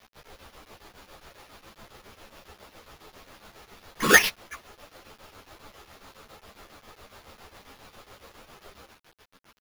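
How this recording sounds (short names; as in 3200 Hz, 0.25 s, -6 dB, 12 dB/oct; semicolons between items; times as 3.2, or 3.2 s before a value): aliases and images of a low sample rate 8200 Hz, jitter 0%; tremolo triangle 7.3 Hz, depth 75%; a quantiser's noise floor 10-bit, dither none; a shimmering, thickened sound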